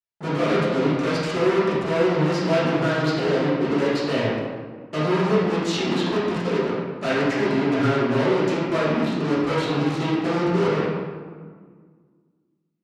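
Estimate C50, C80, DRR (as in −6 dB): −2.0 dB, 1.0 dB, −11.5 dB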